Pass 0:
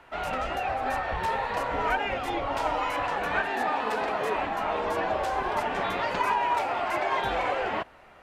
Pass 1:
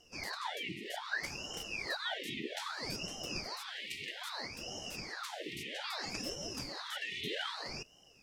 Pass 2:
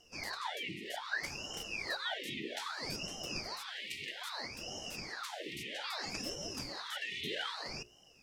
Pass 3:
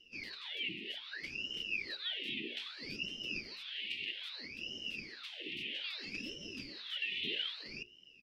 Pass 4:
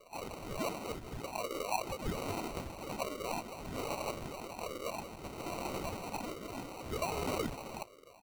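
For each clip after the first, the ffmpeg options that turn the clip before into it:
-af "afftfilt=real='re*(1-between(b*sr/4096,180,2100))':imag='im*(1-between(b*sr/4096,180,2100))':win_size=4096:overlap=0.75,aeval=exprs='val(0)*sin(2*PI*1600*n/s+1600*0.85/0.62*sin(2*PI*0.62*n/s))':c=same,volume=1.19"
-af "bandreject=f=60:t=h:w=6,bandreject=f=120:t=h:w=6,bandreject=f=180:t=h:w=6,bandreject=f=240:t=h:w=6,bandreject=f=300:t=h:w=6,bandreject=f=360:t=h:w=6,bandreject=f=420:t=h:w=6,bandreject=f=480:t=h:w=6,bandreject=f=540:t=h:w=6"
-af "firequalizer=gain_entry='entry(140,0);entry(230,7);entry(390,4);entry(750,-17);entry(2700,14);entry(6800,-11)':delay=0.05:min_phase=1,volume=0.422"
-af "acrusher=samples=26:mix=1:aa=0.000001,volume=1.41"

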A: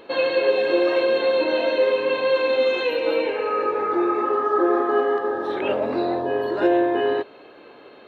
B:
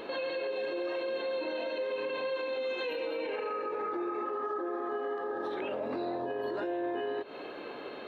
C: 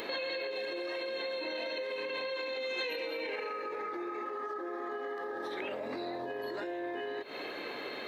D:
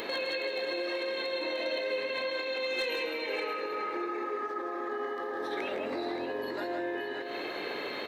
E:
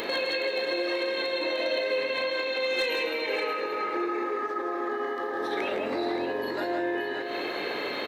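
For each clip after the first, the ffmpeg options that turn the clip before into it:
-af "equalizer=f=100:t=o:w=0.21:g=-13.5,acompressor=threshold=0.0398:ratio=6,alimiter=level_in=2.11:limit=0.0631:level=0:latency=1:release=108,volume=0.473,volume=1.5"
-af "highshelf=f=2300:t=q:w=3:g=-6.5,acompressor=threshold=0.0178:ratio=6,aexciter=amount=5.9:drive=7.1:freq=2300"
-filter_complex "[0:a]asoftclip=type=hard:threshold=0.0376,asplit=2[s0][s1];[s1]aecho=0:1:158|174|576:0.422|0.335|0.316[s2];[s0][s2]amix=inputs=2:normalize=0,volume=1.33"
-filter_complex "[0:a]asplit=2[s0][s1];[s1]adelay=37,volume=0.237[s2];[s0][s2]amix=inputs=2:normalize=0,volume=1.68"

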